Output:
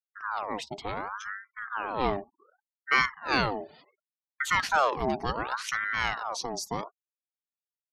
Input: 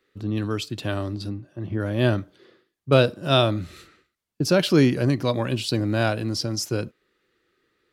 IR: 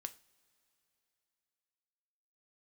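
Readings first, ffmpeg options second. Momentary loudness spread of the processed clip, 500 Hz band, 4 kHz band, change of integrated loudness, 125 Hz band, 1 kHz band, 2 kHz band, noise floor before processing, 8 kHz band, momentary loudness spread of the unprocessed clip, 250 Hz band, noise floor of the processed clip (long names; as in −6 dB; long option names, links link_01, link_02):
13 LU, −11.0 dB, −8.0 dB, −6.5 dB, −19.0 dB, +3.5 dB, +3.0 dB, −81 dBFS, −5.0 dB, 12 LU, −14.5 dB, below −85 dBFS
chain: -af "afftfilt=real='re*gte(hypot(re,im),0.00794)':imag='im*gte(hypot(re,im),0.00794)':win_size=1024:overlap=0.75,aeval=exprs='val(0)*sin(2*PI*1100*n/s+1100*0.55/0.68*sin(2*PI*0.68*n/s))':channel_layout=same,volume=-4.5dB"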